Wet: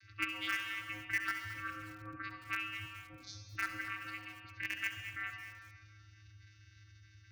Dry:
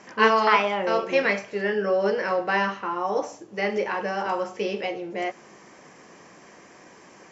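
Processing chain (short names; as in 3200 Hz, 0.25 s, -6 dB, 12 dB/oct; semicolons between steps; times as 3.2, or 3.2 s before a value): spectral gate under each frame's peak -20 dB strong; inverse Chebyshev band-stop 340–1300 Hz, stop band 50 dB; gate -53 dBFS, range -8 dB; LPF 3400 Hz 6 dB/oct; low shelf 280 Hz -10 dB; compressor 16:1, threshold -43 dBFS, peak gain reduction 13 dB; vocoder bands 16, square 105 Hz; in parallel at -11.5 dB: requantised 6-bit, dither none; on the sum: formant shift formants -4 st; thinning echo 67 ms, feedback 61%, high-pass 640 Hz, level -12 dB; on a send at -6 dB: reverb RT60 2.1 s, pre-delay 61 ms; on the sum: lo-fi delay 0.22 s, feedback 35%, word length 9-bit, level -13 dB; gain +9.5 dB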